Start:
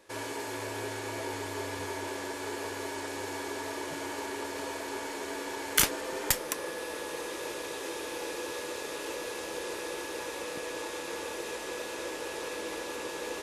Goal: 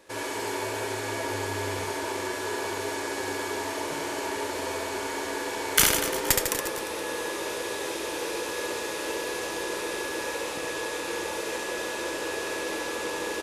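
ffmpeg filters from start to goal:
ffmpeg -i in.wav -af "aecho=1:1:70|150.5|243.1|349.5|472:0.631|0.398|0.251|0.158|0.1,volume=3.5dB" out.wav

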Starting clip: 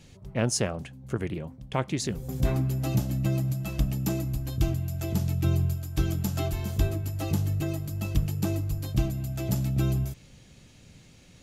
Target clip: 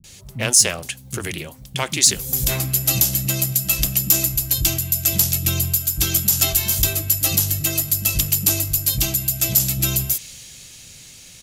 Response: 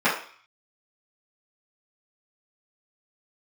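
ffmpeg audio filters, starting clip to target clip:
-filter_complex "[0:a]acrossover=split=240[link_01][link_02];[link_02]adelay=40[link_03];[link_01][link_03]amix=inputs=2:normalize=0,asplit=2[link_04][link_05];[link_05]asoftclip=type=tanh:threshold=-26.5dB,volume=-5dB[link_06];[link_04][link_06]amix=inputs=2:normalize=0,crystalizer=i=7:c=0,alimiter=level_in=5dB:limit=-1dB:release=50:level=0:latency=1,adynamicequalizer=threshold=0.0141:dfrequency=1700:dqfactor=0.7:tfrequency=1700:tqfactor=0.7:attack=5:release=100:ratio=0.375:range=3:mode=boostabove:tftype=highshelf,volume=-6.5dB"

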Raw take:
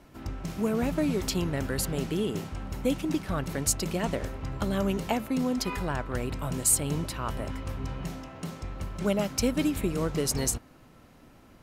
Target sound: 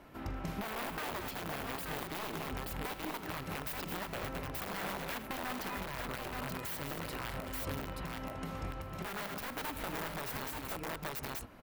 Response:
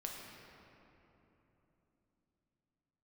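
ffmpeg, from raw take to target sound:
-filter_complex "[0:a]aeval=exprs='(mod(14.1*val(0)+1,2)-1)/14.1':channel_layout=same,lowshelf=frequency=400:gain=-9,asplit=2[link_01][link_02];[link_02]aecho=0:1:42|80|216|879:0.158|0.15|0.316|0.501[link_03];[link_01][link_03]amix=inputs=2:normalize=0,acompressor=threshold=-35dB:ratio=6,equalizer=frequency=7000:width_type=o:width=1.9:gain=-11,alimiter=level_in=8.5dB:limit=-24dB:level=0:latency=1:release=318,volume=-8.5dB,volume=4dB"

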